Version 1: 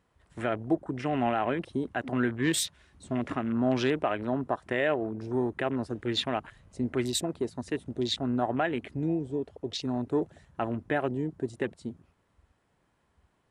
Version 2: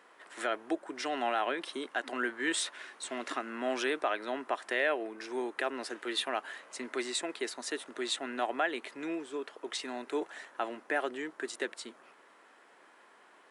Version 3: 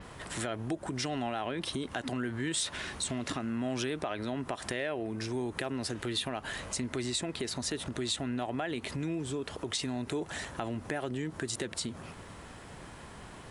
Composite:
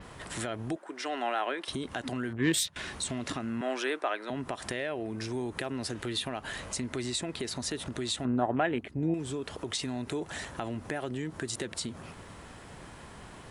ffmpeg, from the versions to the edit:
-filter_complex "[1:a]asplit=2[a][b];[0:a]asplit=2[c][d];[2:a]asplit=5[e][f][g][h][i];[e]atrim=end=0.762[j];[a]atrim=start=0.758:end=1.682[k];[f]atrim=start=1.678:end=2.332[l];[c]atrim=start=2.328:end=2.762[m];[g]atrim=start=2.758:end=3.612[n];[b]atrim=start=3.608:end=4.302[o];[h]atrim=start=4.298:end=8.252[p];[d]atrim=start=8.248:end=9.142[q];[i]atrim=start=9.138[r];[j][k]acrossfade=d=0.004:c1=hsin:c2=hsin[s];[s][l]acrossfade=d=0.004:c1=hsin:c2=hsin[t];[t][m]acrossfade=d=0.004:c1=hsin:c2=hsin[u];[u][n]acrossfade=d=0.004:c1=hsin:c2=hsin[v];[v][o]acrossfade=d=0.004:c1=hsin:c2=hsin[w];[w][p]acrossfade=d=0.004:c1=hsin:c2=hsin[x];[x][q]acrossfade=d=0.004:c1=hsin:c2=hsin[y];[y][r]acrossfade=d=0.004:c1=hsin:c2=hsin"

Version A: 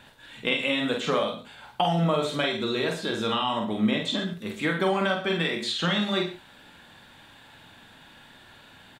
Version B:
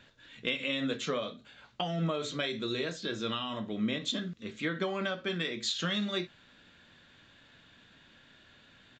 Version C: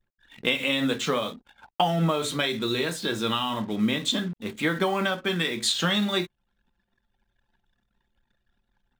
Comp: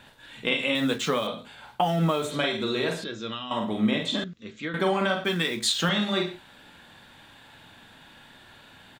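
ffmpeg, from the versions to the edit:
-filter_complex "[2:a]asplit=3[a][b][c];[1:a]asplit=2[d][e];[0:a]asplit=6[f][g][h][i][j][k];[f]atrim=end=0.752[l];[a]atrim=start=0.748:end=1.272[m];[g]atrim=start=1.268:end=1.89[n];[b]atrim=start=1.73:end=2.35[o];[h]atrim=start=2.19:end=3.042[p];[d]atrim=start=3.038:end=3.512[q];[i]atrim=start=3.508:end=4.242[r];[e]atrim=start=4.238:end=4.742[s];[j]atrim=start=4.738:end=5.242[t];[c]atrim=start=5.238:end=5.892[u];[k]atrim=start=5.888[v];[l][m]acrossfade=d=0.004:c1=hsin:c2=hsin[w];[w][n]acrossfade=d=0.004:c1=hsin:c2=hsin[x];[x][o]acrossfade=d=0.16:c1=tri:c2=tri[y];[y][p]acrossfade=d=0.16:c1=tri:c2=tri[z];[z][q]acrossfade=d=0.004:c1=hsin:c2=hsin[aa];[aa][r]acrossfade=d=0.004:c1=hsin:c2=hsin[ab];[ab][s]acrossfade=d=0.004:c1=hsin:c2=hsin[ac];[ac][t]acrossfade=d=0.004:c1=hsin:c2=hsin[ad];[ad][u]acrossfade=d=0.004:c1=hsin:c2=hsin[ae];[ae][v]acrossfade=d=0.004:c1=hsin:c2=hsin"

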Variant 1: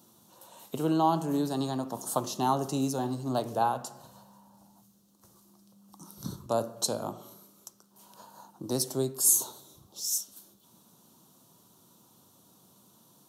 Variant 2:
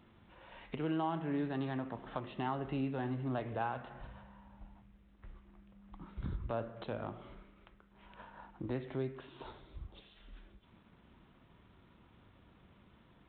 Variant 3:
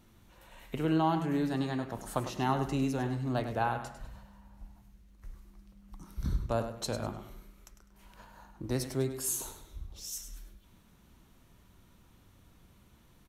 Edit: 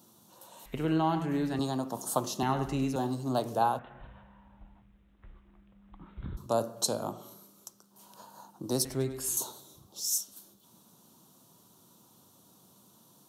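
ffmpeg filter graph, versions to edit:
-filter_complex "[2:a]asplit=3[a][b][c];[0:a]asplit=5[d][e][f][g][h];[d]atrim=end=0.662[i];[a]atrim=start=0.658:end=1.592[j];[e]atrim=start=1.588:end=2.432[k];[b]atrim=start=2.428:end=2.962[l];[f]atrim=start=2.958:end=3.792[m];[1:a]atrim=start=3.788:end=6.372[n];[g]atrim=start=6.368:end=8.852[o];[c]atrim=start=8.848:end=9.372[p];[h]atrim=start=9.368[q];[i][j]acrossfade=d=0.004:c1=hsin:c2=hsin[r];[r][k]acrossfade=d=0.004:c1=hsin:c2=hsin[s];[s][l]acrossfade=d=0.004:c1=hsin:c2=hsin[t];[t][m]acrossfade=d=0.004:c1=hsin:c2=hsin[u];[u][n]acrossfade=d=0.004:c1=hsin:c2=hsin[v];[v][o]acrossfade=d=0.004:c1=hsin:c2=hsin[w];[w][p]acrossfade=d=0.004:c1=hsin:c2=hsin[x];[x][q]acrossfade=d=0.004:c1=hsin:c2=hsin"

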